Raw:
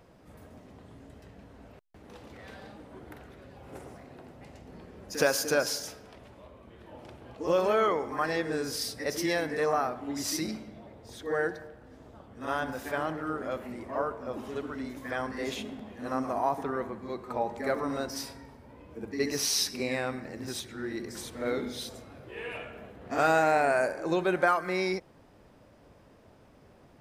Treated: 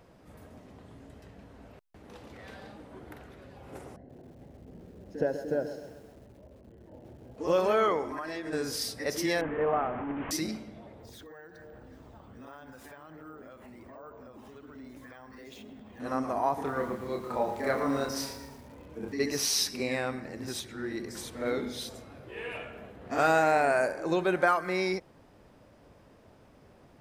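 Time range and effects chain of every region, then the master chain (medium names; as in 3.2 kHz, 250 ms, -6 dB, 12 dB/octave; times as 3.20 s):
3.96–7.38 s: boxcar filter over 37 samples + bit-crushed delay 130 ms, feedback 55%, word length 9-bit, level -11 dB
8.04–8.53 s: comb 3.1 ms, depth 45% + compression 10:1, threshold -32 dBFS
9.41–10.31 s: one-bit delta coder 16 kbps, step -28.5 dBFS + low-pass 1.3 kHz
11.00–16.00 s: compression, threshold -46 dBFS + phaser 1.3 Hz, delay 1.2 ms, feedback 25% + careless resampling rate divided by 2×, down none, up hold
16.54–19.13 s: doubling 29 ms -4 dB + bit-crushed delay 114 ms, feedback 55%, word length 8-bit, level -10.5 dB
whole clip: none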